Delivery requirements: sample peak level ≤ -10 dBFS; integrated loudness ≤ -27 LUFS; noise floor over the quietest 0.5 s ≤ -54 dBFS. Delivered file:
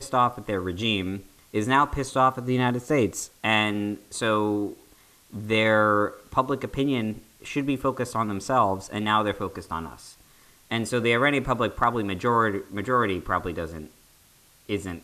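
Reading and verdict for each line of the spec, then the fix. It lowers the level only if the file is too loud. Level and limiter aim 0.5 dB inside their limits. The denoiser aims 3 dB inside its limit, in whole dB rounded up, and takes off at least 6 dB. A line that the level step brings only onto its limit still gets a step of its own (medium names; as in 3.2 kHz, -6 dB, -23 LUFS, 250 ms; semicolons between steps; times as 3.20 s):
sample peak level -7.5 dBFS: fail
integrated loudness -25.0 LUFS: fail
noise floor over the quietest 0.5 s -57 dBFS: pass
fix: trim -2.5 dB; peak limiter -10.5 dBFS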